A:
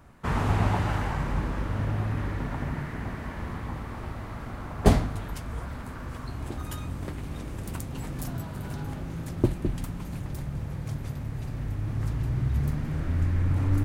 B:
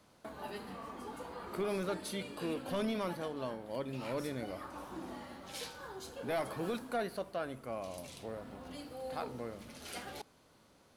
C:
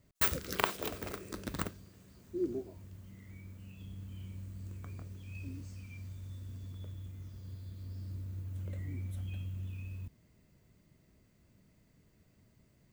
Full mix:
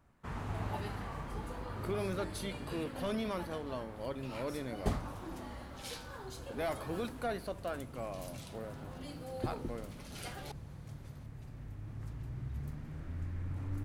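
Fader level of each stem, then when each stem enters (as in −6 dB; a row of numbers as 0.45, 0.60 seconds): −14.5 dB, −1.0 dB, muted; 0.00 s, 0.30 s, muted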